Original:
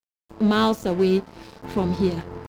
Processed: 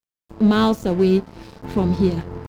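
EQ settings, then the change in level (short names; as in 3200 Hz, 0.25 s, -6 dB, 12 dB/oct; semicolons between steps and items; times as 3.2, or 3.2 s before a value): low shelf 270 Hz +7 dB; 0.0 dB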